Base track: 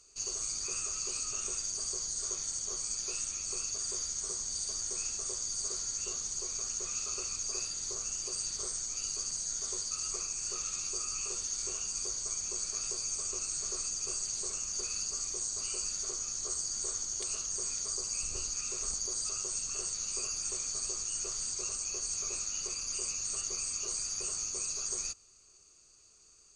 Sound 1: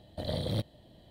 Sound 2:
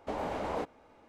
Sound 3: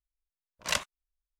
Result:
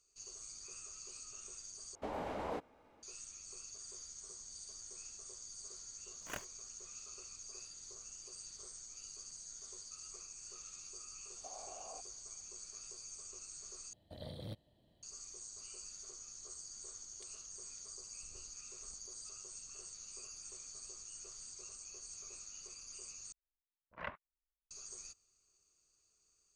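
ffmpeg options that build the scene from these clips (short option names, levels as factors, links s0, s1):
-filter_complex "[2:a]asplit=2[s0][s1];[3:a]asplit=2[s2][s3];[0:a]volume=0.188[s4];[s2]acrusher=samples=10:mix=1:aa=0.000001[s5];[s1]asplit=3[s6][s7][s8];[s6]bandpass=f=730:t=q:w=8,volume=1[s9];[s7]bandpass=f=1090:t=q:w=8,volume=0.501[s10];[s8]bandpass=f=2440:t=q:w=8,volume=0.355[s11];[s9][s10][s11]amix=inputs=3:normalize=0[s12];[s3]lowpass=f=2000:w=0.5412,lowpass=f=2000:w=1.3066[s13];[s4]asplit=4[s14][s15][s16][s17];[s14]atrim=end=1.954[s18];[s0]atrim=end=1.08,asetpts=PTS-STARTPTS,volume=0.501[s19];[s15]atrim=start=3.026:end=13.934[s20];[1:a]atrim=end=1.1,asetpts=PTS-STARTPTS,volume=0.188[s21];[s16]atrim=start=15.026:end=23.324[s22];[s13]atrim=end=1.39,asetpts=PTS-STARTPTS,volume=0.316[s23];[s17]atrim=start=24.706[s24];[s5]atrim=end=1.39,asetpts=PTS-STARTPTS,volume=0.15,afade=t=in:d=0.004:c=hsin,afade=t=out:st=1.386:d=0.004:c=hsin,adelay=247401S[s25];[s12]atrim=end=1.08,asetpts=PTS-STARTPTS,volume=0.335,afade=t=in:d=0.004:c=hsin,afade=t=out:st=1.076:d=0.004:c=hsin,adelay=11360[s26];[s18][s19]acrossfade=d=0.004:c1=hsin:c2=hsin[s27];[s27][s20]acrossfade=d=0.004:c1=hsin:c2=hsin[s28];[s28][s21]acrossfade=d=0.004:c1=hsin:c2=hsin[s29];[s29][s22]acrossfade=d=0.004:c1=hsin:c2=hsin[s30];[s30][s23]acrossfade=d=0.004:c1=hsin:c2=hsin[s31];[s31][s24]acrossfade=d=0.004:c1=hsin:c2=hsin[s32];[s32][s25][s26]amix=inputs=3:normalize=0"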